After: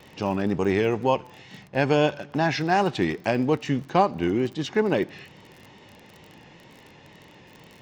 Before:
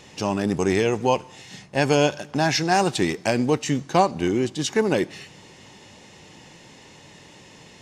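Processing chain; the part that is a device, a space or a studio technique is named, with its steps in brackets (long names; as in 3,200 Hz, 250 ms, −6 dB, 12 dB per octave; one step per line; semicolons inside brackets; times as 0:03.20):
lo-fi chain (low-pass filter 3,300 Hz 12 dB per octave; tape wow and flutter; surface crackle 32 per second −34 dBFS)
level −1.5 dB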